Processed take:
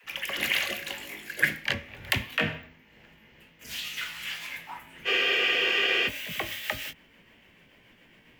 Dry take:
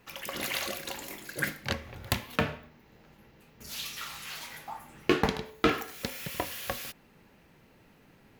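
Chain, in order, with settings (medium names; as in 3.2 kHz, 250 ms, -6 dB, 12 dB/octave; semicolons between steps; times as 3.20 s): pitch bend over the whole clip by +2.5 st starting unshifted; high-order bell 2.3 kHz +9.5 dB 1.2 oct; phase dispersion lows, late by 48 ms, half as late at 320 Hz; spectral freeze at 5.09 s, 0.98 s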